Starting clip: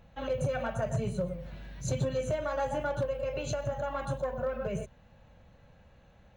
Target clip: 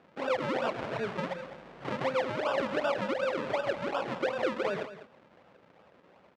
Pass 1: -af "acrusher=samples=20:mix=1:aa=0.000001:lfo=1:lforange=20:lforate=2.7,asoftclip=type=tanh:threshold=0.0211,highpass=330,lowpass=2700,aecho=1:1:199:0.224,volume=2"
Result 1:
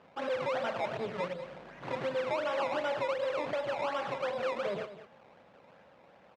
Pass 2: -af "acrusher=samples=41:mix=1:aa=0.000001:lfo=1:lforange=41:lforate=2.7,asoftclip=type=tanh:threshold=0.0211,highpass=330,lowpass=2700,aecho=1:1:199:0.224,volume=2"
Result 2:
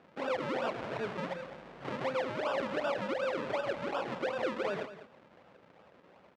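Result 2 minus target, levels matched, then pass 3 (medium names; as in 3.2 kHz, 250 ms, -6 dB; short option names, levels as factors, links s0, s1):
saturation: distortion +7 dB
-af "acrusher=samples=41:mix=1:aa=0.000001:lfo=1:lforange=41:lforate=2.7,asoftclip=type=tanh:threshold=0.0447,highpass=330,lowpass=2700,aecho=1:1:199:0.224,volume=2"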